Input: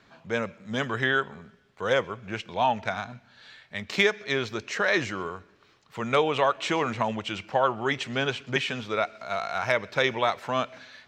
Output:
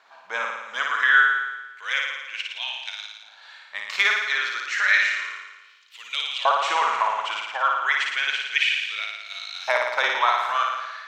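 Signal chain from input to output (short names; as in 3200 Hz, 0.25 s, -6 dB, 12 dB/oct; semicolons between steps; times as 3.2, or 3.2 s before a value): LFO high-pass saw up 0.31 Hz 820–3800 Hz; flutter echo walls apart 9.7 m, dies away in 1.1 s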